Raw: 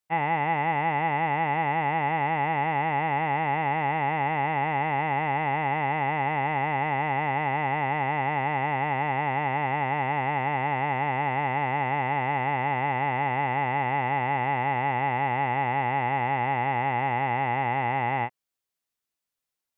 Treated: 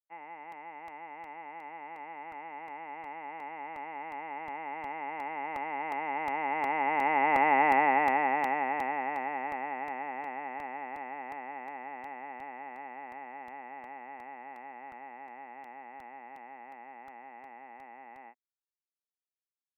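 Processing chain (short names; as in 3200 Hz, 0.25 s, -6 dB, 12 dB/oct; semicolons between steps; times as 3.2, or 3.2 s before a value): Doppler pass-by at 7.64, 6 m/s, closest 3 m; elliptic band-pass 240–2500 Hz, stop band 40 dB; crackling interface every 0.36 s, samples 64, repeat, from 0.52; gain +3.5 dB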